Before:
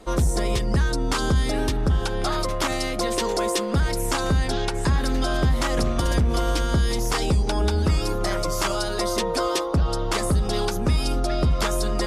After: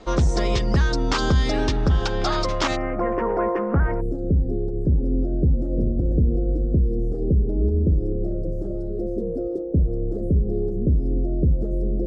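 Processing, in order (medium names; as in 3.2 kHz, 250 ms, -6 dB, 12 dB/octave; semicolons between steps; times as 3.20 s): inverse Chebyshev low-pass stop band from 11 kHz, stop band 40 dB, from 2.75 s stop band from 3.6 kHz, from 4.00 s stop band from 940 Hz; trim +2 dB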